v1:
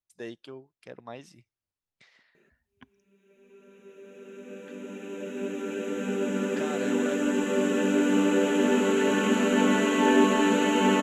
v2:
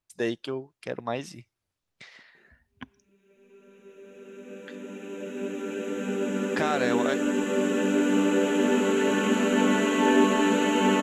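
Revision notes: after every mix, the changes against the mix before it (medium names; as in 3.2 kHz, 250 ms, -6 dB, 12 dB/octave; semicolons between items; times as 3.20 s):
speech +11.0 dB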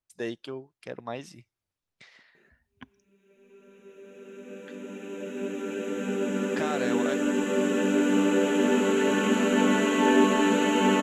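speech -5.0 dB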